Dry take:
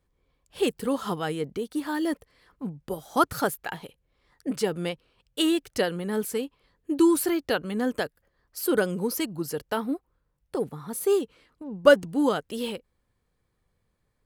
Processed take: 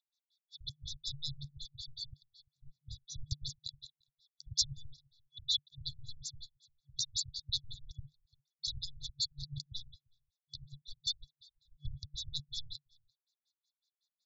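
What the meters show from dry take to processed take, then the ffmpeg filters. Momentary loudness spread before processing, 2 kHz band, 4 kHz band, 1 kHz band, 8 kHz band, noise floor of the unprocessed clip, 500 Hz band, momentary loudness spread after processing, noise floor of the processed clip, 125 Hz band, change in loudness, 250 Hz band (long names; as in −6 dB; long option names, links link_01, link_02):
16 LU, below −40 dB, −0.5 dB, below −40 dB, −5.5 dB, −75 dBFS, below −40 dB, 19 LU, below −85 dBFS, −7.5 dB, −12.5 dB, below −30 dB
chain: -filter_complex "[0:a]acrossover=split=590|1500[link_01][link_02][link_03];[link_01]acrusher=bits=4:mix=0:aa=0.5[link_04];[link_04][link_02][link_03]amix=inputs=3:normalize=0,asplit=2[link_05][link_06];[link_06]adelay=344,volume=-27dB,highshelf=frequency=4000:gain=-7.74[link_07];[link_05][link_07]amix=inputs=2:normalize=0,asoftclip=type=hard:threshold=-17.5dB,lowshelf=frequency=110:gain=-7,afftfilt=real='re*(1-between(b*sr/4096,140,3400))':imag='im*(1-between(b*sr/4096,140,3400))':win_size=4096:overlap=0.75,afftfilt=real='re*lt(b*sr/1024,930*pow(7600/930,0.5+0.5*sin(2*PI*5.4*pts/sr)))':imag='im*lt(b*sr/1024,930*pow(7600/930,0.5+0.5*sin(2*PI*5.4*pts/sr)))':win_size=1024:overlap=0.75,volume=9.5dB"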